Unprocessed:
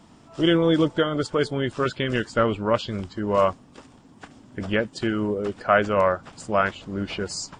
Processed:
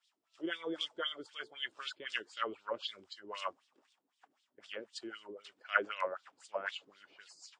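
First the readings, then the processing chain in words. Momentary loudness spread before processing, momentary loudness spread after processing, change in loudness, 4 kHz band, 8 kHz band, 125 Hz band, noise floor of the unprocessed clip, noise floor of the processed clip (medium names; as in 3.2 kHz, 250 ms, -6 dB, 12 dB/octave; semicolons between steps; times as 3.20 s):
10 LU, 15 LU, -16.0 dB, -9.0 dB, -18.5 dB, under -35 dB, -52 dBFS, -83 dBFS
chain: pre-emphasis filter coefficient 0.97; wah-wah 3.9 Hz 310–3900 Hz, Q 3.1; three bands expanded up and down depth 40%; trim +9 dB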